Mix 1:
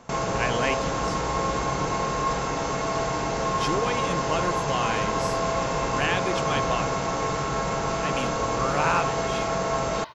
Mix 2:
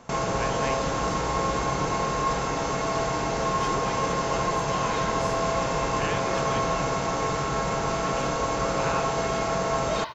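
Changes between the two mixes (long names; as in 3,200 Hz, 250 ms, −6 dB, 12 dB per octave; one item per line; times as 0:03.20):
speech −8.0 dB
second sound +6.5 dB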